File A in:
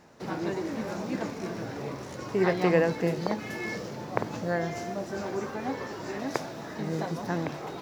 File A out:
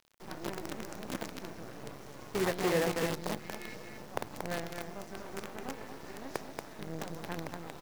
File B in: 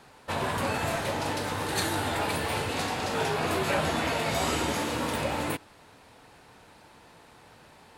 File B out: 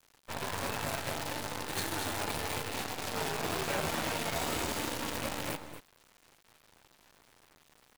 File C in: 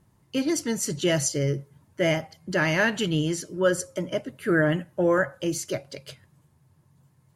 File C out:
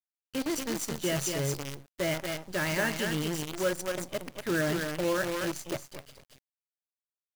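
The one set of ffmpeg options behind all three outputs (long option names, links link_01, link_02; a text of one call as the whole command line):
ffmpeg -i in.wav -af "aecho=1:1:232:0.531,acrusher=bits=5:dc=4:mix=0:aa=0.000001,volume=-7.5dB" out.wav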